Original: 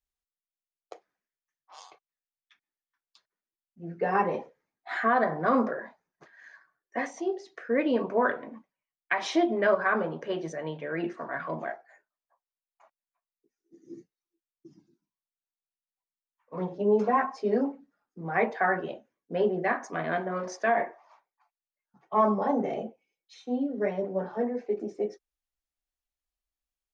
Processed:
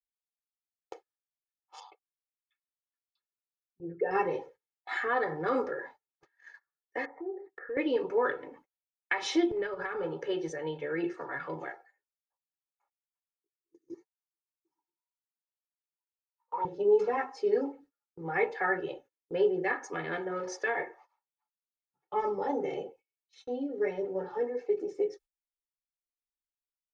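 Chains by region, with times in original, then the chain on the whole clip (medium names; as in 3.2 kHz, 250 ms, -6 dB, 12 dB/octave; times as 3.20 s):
1.80–4.11 s: resonances exaggerated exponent 1.5 + low-pass 4.4 kHz 24 dB/octave
7.05–7.77 s: elliptic low-pass 1.9 kHz + compression 2.5:1, threshold -40 dBFS
9.51–10.03 s: bass shelf 140 Hz +12 dB + compression 10:1, threshold -26 dBFS
13.94–16.65 s: resonant high-pass 940 Hz, resonance Q 8 + tilt EQ -3 dB/octave
whole clip: gate -51 dBFS, range -21 dB; dynamic bell 830 Hz, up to -6 dB, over -36 dBFS, Q 0.74; comb 2.3 ms, depth 95%; trim -2.5 dB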